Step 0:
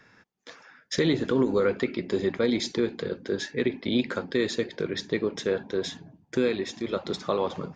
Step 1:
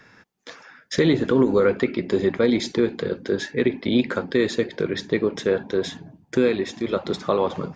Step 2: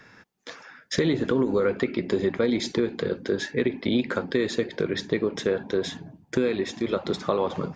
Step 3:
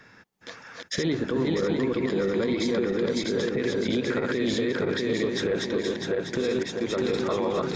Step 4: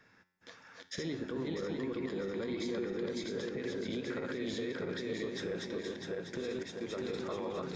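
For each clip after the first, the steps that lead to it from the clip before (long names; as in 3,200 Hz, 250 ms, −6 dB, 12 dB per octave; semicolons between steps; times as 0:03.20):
dynamic equaliser 5,400 Hz, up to −5 dB, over −46 dBFS, Q 0.71; level +5.5 dB
downward compressor 2.5 to 1, threshold −21 dBFS, peak gain reduction 6 dB
feedback delay that plays each chunk backwards 324 ms, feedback 66%, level −0.5 dB; brickwall limiter −16 dBFS, peak gain reduction 9.5 dB; level −1 dB
tuned comb filter 90 Hz, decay 0.76 s, harmonics all, mix 60%; level −5 dB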